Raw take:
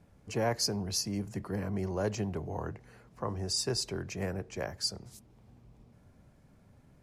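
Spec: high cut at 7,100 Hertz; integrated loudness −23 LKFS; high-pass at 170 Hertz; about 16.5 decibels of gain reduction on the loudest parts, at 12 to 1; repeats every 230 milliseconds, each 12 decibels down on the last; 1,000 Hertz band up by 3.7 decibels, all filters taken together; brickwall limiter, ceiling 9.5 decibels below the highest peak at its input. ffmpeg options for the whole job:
ffmpeg -i in.wav -af "highpass=170,lowpass=7100,equalizer=frequency=1000:width_type=o:gain=5,acompressor=threshold=-41dB:ratio=12,alimiter=level_in=14dB:limit=-24dB:level=0:latency=1,volume=-14dB,aecho=1:1:230|460|690:0.251|0.0628|0.0157,volume=25dB" out.wav

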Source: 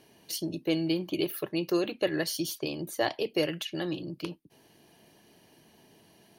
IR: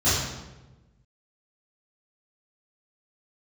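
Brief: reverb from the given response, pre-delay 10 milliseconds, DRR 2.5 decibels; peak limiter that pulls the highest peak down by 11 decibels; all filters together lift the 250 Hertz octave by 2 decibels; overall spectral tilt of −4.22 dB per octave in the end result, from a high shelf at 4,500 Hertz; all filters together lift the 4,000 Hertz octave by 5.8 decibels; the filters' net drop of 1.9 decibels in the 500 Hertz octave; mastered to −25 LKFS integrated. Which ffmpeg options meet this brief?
-filter_complex "[0:a]equalizer=frequency=250:width_type=o:gain=7,equalizer=frequency=500:width_type=o:gain=-6.5,equalizer=frequency=4000:width_type=o:gain=4,highshelf=frequency=4500:gain=7,alimiter=limit=-22dB:level=0:latency=1,asplit=2[link_01][link_02];[1:a]atrim=start_sample=2205,adelay=10[link_03];[link_02][link_03]afir=irnorm=-1:irlink=0,volume=-19dB[link_04];[link_01][link_04]amix=inputs=2:normalize=0,volume=5dB"

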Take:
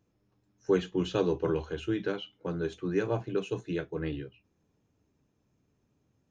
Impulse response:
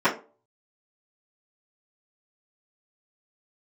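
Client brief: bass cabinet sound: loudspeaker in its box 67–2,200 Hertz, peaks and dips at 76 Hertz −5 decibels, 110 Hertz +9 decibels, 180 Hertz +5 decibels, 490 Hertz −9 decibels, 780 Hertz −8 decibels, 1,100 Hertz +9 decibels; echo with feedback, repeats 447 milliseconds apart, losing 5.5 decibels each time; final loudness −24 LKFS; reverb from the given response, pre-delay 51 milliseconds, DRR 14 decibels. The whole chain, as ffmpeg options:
-filter_complex "[0:a]aecho=1:1:447|894|1341|1788|2235|2682|3129:0.531|0.281|0.149|0.079|0.0419|0.0222|0.0118,asplit=2[link_01][link_02];[1:a]atrim=start_sample=2205,adelay=51[link_03];[link_02][link_03]afir=irnorm=-1:irlink=0,volume=-32dB[link_04];[link_01][link_04]amix=inputs=2:normalize=0,highpass=frequency=67:width=0.5412,highpass=frequency=67:width=1.3066,equalizer=frequency=76:width_type=q:width=4:gain=-5,equalizer=frequency=110:width_type=q:width=4:gain=9,equalizer=frequency=180:width_type=q:width=4:gain=5,equalizer=frequency=490:width_type=q:width=4:gain=-9,equalizer=frequency=780:width_type=q:width=4:gain=-8,equalizer=frequency=1100:width_type=q:width=4:gain=9,lowpass=frequency=2200:width=0.5412,lowpass=frequency=2200:width=1.3066,volume=7.5dB"

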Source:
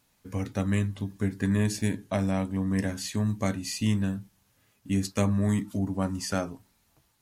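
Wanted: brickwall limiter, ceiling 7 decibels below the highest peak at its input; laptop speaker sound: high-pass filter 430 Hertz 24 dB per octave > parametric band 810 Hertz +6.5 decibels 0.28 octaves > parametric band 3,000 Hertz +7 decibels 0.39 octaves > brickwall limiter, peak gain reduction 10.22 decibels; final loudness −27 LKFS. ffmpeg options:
ffmpeg -i in.wav -af "alimiter=limit=-19dB:level=0:latency=1,highpass=frequency=430:width=0.5412,highpass=frequency=430:width=1.3066,equalizer=frequency=810:width_type=o:width=0.28:gain=6.5,equalizer=frequency=3000:width_type=o:width=0.39:gain=7,volume=14.5dB,alimiter=limit=-15dB:level=0:latency=1" out.wav

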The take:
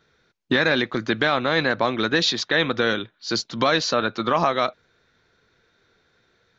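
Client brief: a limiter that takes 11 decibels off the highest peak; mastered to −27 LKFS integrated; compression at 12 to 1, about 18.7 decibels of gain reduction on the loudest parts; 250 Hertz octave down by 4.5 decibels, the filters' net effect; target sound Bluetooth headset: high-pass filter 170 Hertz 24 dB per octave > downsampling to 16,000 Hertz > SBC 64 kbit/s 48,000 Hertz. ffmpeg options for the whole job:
ffmpeg -i in.wav -af "equalizer=frequency=250:width_type=o:gain=-5.5,acompressor=threshold=-35dB:ratio=12,alimiter=level_in=8dB:limit=-24dB:level=0:latency=1,volume=-8dB,highpass=frequency=170:width=0.5412,highpass=frequency=170:width=1.3066,aresample=16000,aresample=44100,volume=16dB" -ar 48000 -c:a sbc -b:a 64k out.sbc

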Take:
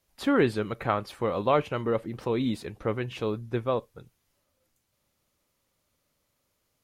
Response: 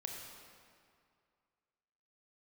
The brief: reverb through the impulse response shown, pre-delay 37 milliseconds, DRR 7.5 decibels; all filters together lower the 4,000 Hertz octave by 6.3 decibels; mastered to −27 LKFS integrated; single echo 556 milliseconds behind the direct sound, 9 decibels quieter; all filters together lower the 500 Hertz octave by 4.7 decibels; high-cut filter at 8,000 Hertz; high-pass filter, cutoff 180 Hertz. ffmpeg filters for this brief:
-filter_complex "[0:a]highpass=180,lowpass=8000,equalizer=frequency=500:width_type=o:gain=-5.5,equalizer=frequency=4000:width_type=o:gain=-8,aecho=1:1:556:0.355,asplit=2[link_01][link_02];[1:a]atrim=start_sample=2205,adelay=37[link_03];[link_02][link_03]afir=irnorm=-1:irlink=0,volume=-6.5dB[link_04];[link_01][link_04]amix=inputs=2:normalize=0,volume=4dB"

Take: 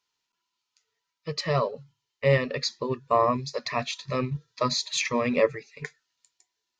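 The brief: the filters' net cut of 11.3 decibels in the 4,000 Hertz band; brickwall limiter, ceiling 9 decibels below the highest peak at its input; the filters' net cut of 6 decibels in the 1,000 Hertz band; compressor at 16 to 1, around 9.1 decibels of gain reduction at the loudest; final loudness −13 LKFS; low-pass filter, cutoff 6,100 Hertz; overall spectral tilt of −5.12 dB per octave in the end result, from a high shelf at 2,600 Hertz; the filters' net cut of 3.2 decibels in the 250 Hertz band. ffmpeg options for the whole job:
ffmpeg -i in.wav -af "lowpass=6100,equalizer=frequency=250:width_type=o:gain=-3.5,equalizer=frequency=1000:width_type=o:gain=-6,highshelf=frequency=2600:gain=-4,equalizer=frequency=4000:width_type=o:gain=-8.5,acompressor=threshold=-26dB:ratio=16,volume=24.5dB,alimiter=limit=-1.5dB:level=0:latency=1" out.wav

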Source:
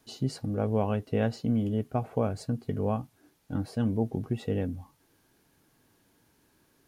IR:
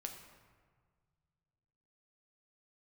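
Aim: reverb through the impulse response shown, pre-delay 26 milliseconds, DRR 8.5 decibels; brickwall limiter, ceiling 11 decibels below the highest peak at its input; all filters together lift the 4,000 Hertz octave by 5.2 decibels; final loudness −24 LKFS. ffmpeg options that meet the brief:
-filter_complex "[0:a]equalizer=frequency=4000:width_type=o:gain=6.5,alimiter=level_in=0.5dB:limit=-24dB:level=0:latency=1,volume=-0.5dB,asplit=2[link_01][link_02];[1:a]atrim=start_sample=2205,adelay=26[link_03];[link_02][link_03]afir=irnorm=-1:irlink=0,volume=-6dB[link_04];[link_01][link_04]amix=inputs=2:normalize=0,volume=11dB"

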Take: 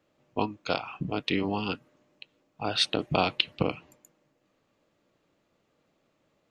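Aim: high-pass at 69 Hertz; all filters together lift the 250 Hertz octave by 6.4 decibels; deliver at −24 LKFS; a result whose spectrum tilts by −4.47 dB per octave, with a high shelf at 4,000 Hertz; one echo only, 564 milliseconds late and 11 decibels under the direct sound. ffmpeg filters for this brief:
ffmpeg -i in.wav -af "highpass=69,equalizer=frequency=250:width_type=o:gain=8.5,highshelf=frequency=4000:gain=-7.5,aecho=1:1:564:0.282,volume=4.5dB" out.wav

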